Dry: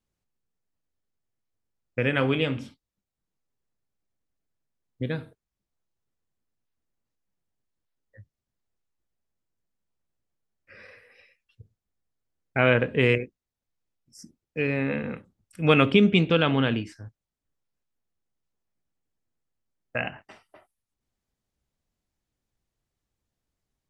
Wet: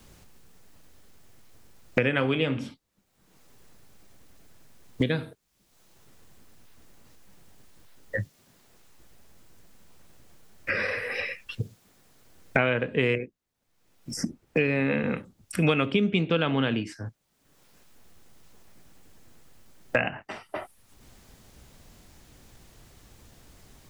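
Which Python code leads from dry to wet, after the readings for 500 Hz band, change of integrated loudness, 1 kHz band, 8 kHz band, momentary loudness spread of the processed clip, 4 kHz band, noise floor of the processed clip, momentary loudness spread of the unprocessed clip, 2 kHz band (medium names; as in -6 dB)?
-2.0 dB, -3.5 dB, -2.0 dB, no reading, 14 LU, -2.5 dB, -71 dBFS, 17 LU, 0.0 dB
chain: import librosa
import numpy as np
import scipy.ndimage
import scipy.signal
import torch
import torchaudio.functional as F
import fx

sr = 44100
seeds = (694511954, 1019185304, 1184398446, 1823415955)

y = fx.band_squash(x, sr, depth_pct=100)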